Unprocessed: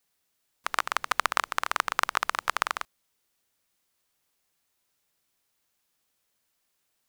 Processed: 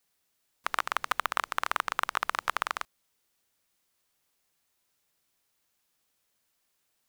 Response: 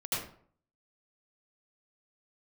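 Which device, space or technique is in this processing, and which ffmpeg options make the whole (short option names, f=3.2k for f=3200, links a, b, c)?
limiter into clipper: -af "alimiter=limit=-5dB:level=0:latency=1:release=377,asoftclip=type=hard:threshold=-11dB"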